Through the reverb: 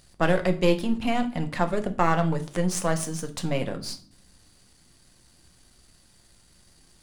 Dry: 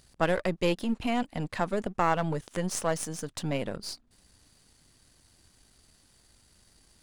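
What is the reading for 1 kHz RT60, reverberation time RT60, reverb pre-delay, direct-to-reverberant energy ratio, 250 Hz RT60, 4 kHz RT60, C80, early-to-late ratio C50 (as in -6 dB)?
0.40 s, 0.50 s, 6 ms, 6.5 dB, 0.85 s, 0.40 s, 19.0 dB, 15.0 dB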